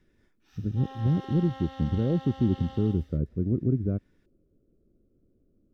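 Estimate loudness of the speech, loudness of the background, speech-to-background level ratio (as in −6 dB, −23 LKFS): −28.0 LKFS, −45.0 LKFS, 17.0 dB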